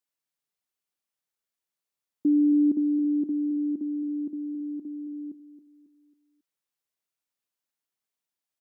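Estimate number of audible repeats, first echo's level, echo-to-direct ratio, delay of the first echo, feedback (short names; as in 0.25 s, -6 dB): 3, -12.0 dB, -11.0 dB, 0.273 s, 41%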